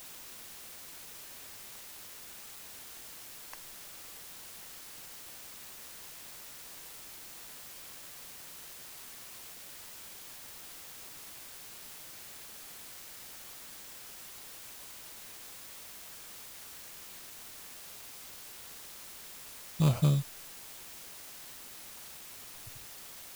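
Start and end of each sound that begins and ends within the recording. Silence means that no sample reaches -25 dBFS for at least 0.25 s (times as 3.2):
19.8–20.19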